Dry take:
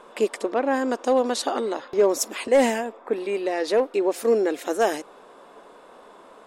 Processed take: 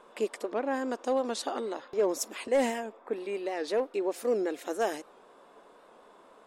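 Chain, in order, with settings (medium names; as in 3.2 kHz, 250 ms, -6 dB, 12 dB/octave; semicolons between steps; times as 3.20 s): warped record 78 rpm, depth 100 cents; trim -8 dB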